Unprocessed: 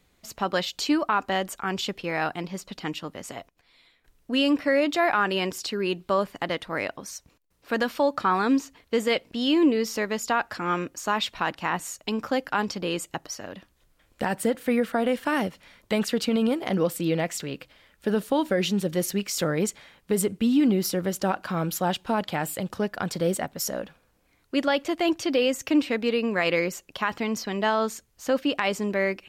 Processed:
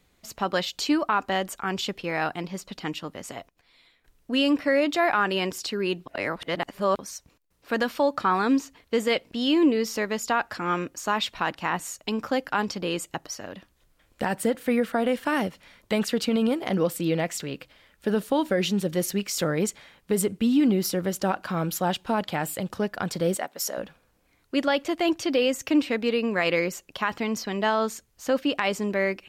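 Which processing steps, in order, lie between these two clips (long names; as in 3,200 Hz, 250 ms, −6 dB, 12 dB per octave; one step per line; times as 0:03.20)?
0:06.06–0:06.99: reverse
0:23.37–0:23.78: high-pass filter 390 Hz 12 dB per octave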